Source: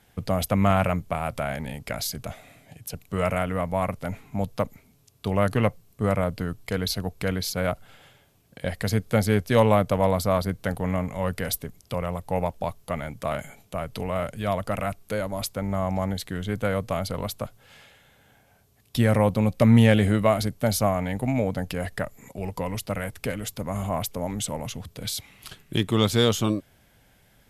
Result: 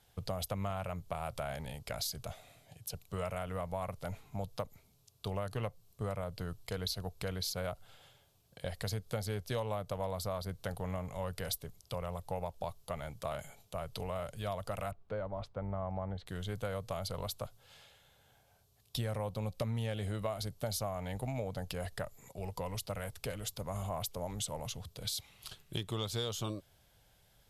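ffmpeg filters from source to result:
-filter_complex "[0:a]asettb=1/sr,asplit=3[a][b][c];[a]atrim=end=14.914[d];[b]atrim=start=14.91:end=16.27,asetpts=PTS-STARTPTS,afade=t=in:d=0.004:c=qsin,afade=t=out:st=1.356:d=0.004:c=qsin,lowpass=1.6k[e];[c]atrim=start=16.266[f];[d][e]acrossfade=d=0.004:c1=hsin:c2=qsin[g];[g][f]acrossfade=d=0.004:c1=qsin:c2=hsin,equalizer=f=250:t=o:w=1:g=-10,equalizer=f=2k:t=o:w=1:g=-7,equalizer=f=4k:t=o:w=1:g=4,acompressor=threshold=-27dB:ratio=6,volume=-6dB"

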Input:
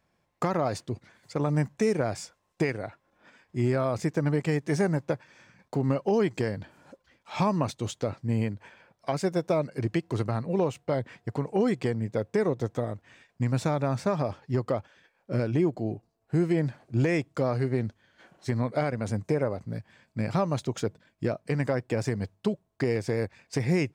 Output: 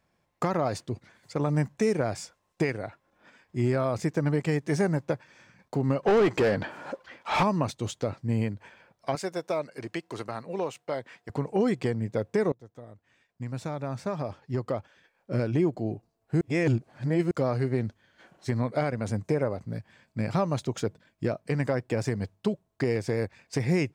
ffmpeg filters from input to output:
-filter_complex "[0:a]asettb=1/sr,asplit=3[a][b][c];[a]atrim=end=6.034[d];[b]atrim=start=6.03:end=7.43,asetpts=PTS-STARTPTS,afade=t=in:d=0.004:c=qsin,afade=t=out:st=1.396:d=0.004:c=qsin,asplit=2[e][f];[f]highpass=f=720:p=1,volume=26dB,asoftclip=type=tanh:threshold=-14dB[g];[e][g]amix=inputs=2:normalize=0,lowpass=f=1.6k:p=1,volume=-6dB[h];[c]atrim=start=7.426[i];[d][h]acrossfade=d=0.004:c1=hsin:c2=qsin[j];[j][i]acrossfade=d=0.004:c1=qsin:c2=hsin,asettb=1/sr,asplit=3[k][l][m];[k]atrim=end=9.154[n];[l]atrim=start=9.15:end=11.3,asetpts=PTS-STARTPTS,afade=t=in:d=0.004:c=qsin,afade=t=out:st=2.146:d=0.004:c=qsin,highpass=f=600:p=1[o];[m]atrim=start=11.296[p];[n][o]acrossfade=d=0.004:c1=hsin:c2=qsin[q];[q][p]acrossfade=d=0.004:c1=qsin:c2=hsin,asplit=4[r][s][t][u];[r]atrim=end=12.52,asetpts=PTS-STARTPTS,afade=t=out:st=12.516:d=0.004:c=hsin:silence=0.0668344[v];[s]atrim=start=12.52:end=16.412,asetpts=PTS-STARTPTS,afade=t=in:d=2.89:silence=0.0668344[w];[t]atrim=start=16.408:end=17.312,asetpts=PTS-STARTPTS,areverse[x];[u]atrim=start=17.308[y];[v][w]concat=n=2:v=0:a=1[z];[z][x]acrossfade=d=0.004:c1=hsin:c2=hsin[aa];[aa][y]acrossfade=d=0.004:c1=hsin:c2=hsin"

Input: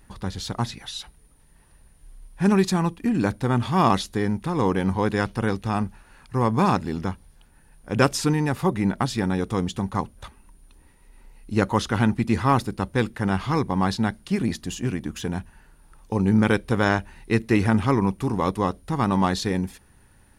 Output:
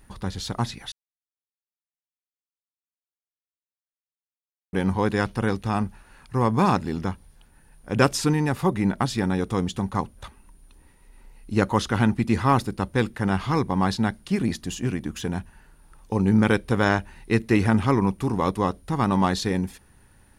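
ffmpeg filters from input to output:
-filter_complex "[0:a]asplit=3[a][b][c];[a]atrim=end=0.92,asetpts=PTS-STARTPTS,afade=t=out:st=0.916:d=0.004:c=hsin[d];[b]atrim=start=0.92:end=4.73,asetpts=PTS-STARTPTS,volume=0[e];[c]atrim=start=4.73,asetpts=PTS-STARTPTS,afade=t=in:d=0.004:c=hsin[f];[d][e][f]concat=n=3:v=0:a=1"

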